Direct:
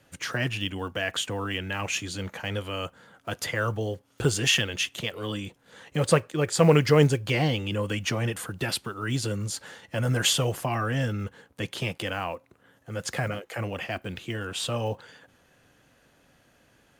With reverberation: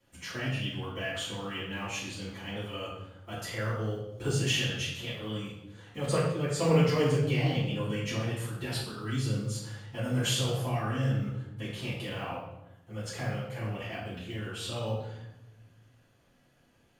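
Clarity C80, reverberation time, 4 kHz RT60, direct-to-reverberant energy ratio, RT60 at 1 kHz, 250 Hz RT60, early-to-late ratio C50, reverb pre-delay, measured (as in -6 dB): 4.5 dB, 0.90 s, 0.70 s, -11.5 dB, 0.85 s, 1.5 s, 1.0 dB, 4 ms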